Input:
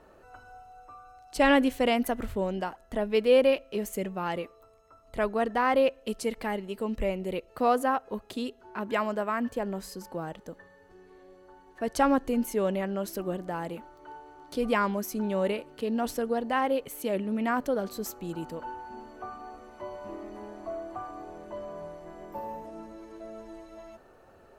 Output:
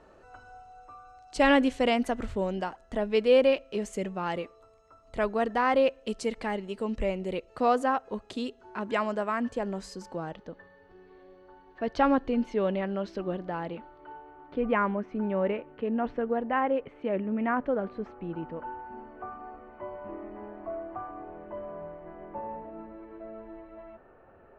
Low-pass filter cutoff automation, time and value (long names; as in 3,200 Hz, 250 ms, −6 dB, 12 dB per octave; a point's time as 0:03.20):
low-pass filter 24 dB per octave
0:10.05 8,200 Hz
0:10.51 4,300 Hz
0:13.62 4,300 Hz
0:14.50 2,400 Hz